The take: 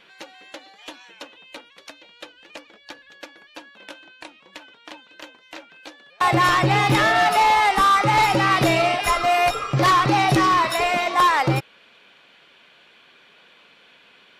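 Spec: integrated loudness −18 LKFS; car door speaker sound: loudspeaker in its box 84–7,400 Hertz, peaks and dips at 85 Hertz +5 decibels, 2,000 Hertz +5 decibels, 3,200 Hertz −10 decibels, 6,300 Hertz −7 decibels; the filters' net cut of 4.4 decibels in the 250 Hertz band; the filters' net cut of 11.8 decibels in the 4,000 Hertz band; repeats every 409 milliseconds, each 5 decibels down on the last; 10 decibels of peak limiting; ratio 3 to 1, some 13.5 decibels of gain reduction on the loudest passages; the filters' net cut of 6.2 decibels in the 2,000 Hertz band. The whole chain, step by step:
parametric band 250 Hz −7 dB
parametric band 2,000 Hz −8 dB
parametric band 4,000 Hz −6.5 dB
downward compressor 3 to 1, threshold −36 dBFS
brickwall limiter −31 dBFS
loudspeaker in its box 84–7,400 Hz, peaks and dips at 85 Hz +5 dB, 2,000 Hz +5 dB, 3,200 Hz −10 dB, 6,300 Hz −7 dB
repeating echo 409 ms, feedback 56%, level −5 dB
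level +21 dB

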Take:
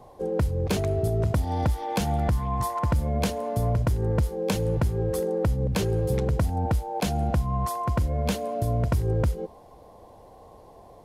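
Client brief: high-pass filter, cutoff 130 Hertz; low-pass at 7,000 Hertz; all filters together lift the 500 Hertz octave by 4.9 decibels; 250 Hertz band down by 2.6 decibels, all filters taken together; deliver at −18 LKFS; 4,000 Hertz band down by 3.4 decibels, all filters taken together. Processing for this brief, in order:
high-pass filter 130 Hz
low-pass filter 7,000 Hz
parametric band 250 Hz −5 dB
parametric band 500 Hz +7 dB
parametric band 4,000 Hz −4 dB
level +8.5 dB

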